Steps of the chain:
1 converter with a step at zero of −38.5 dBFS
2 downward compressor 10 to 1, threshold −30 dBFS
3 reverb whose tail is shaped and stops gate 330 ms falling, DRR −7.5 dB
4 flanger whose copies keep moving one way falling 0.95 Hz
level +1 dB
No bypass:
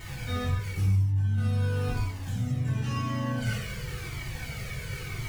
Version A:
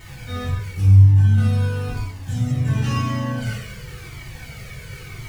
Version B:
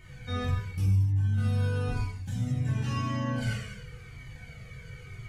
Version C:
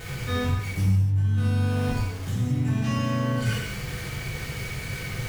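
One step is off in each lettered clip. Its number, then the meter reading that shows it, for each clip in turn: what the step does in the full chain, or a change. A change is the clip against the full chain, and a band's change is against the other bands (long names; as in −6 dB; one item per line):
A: 2, average gain reduction 4.0 dB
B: 1, distortion level −20 dB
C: 4, 250 Hz band +2.0 dB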